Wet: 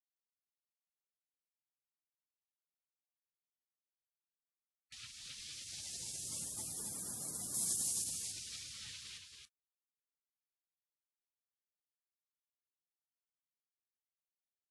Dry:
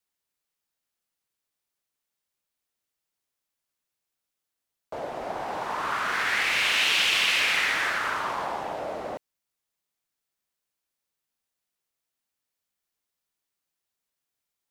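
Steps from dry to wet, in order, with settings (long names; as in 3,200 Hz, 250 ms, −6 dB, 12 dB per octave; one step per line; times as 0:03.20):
high-pass filter 370 Hz 6 dB per octave
gate on every frequency bin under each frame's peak −30 dB weak
0:07.54–0:08.04: high-shelf EQ 6,400 Hz +11 dB
in parallel at −10 dB: hard clipping −35 dBFS, distortion −21 dB
on the sum: single-tap delay 278 ms −5 dB
level +3.5 dB
AAC 48 kbit/s 24,000 Hz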